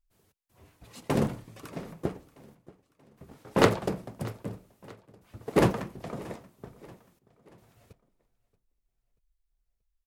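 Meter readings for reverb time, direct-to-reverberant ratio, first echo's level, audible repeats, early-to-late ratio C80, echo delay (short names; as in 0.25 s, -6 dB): none, none, -21.0 dB, 3, none, 0.632 s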